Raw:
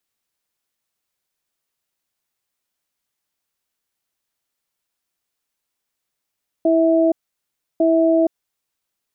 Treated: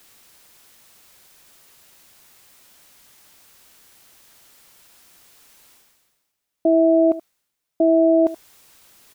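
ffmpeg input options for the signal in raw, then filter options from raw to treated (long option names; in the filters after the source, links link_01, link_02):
-f lavfi -i "aevalsrc='0.178*(sin(2*PI*328*t)+sin(2*PI*652*t))*clip(min(mod(t,1.15),0.47-mod(t,1.15))/0.005,0,1)':duration=2.16:sample_rate=44100"
-af "areverse,acompressor=mode=upward:threshold=-30dB:ratio=2.5,areverse,aecho=1:1:77:0.168"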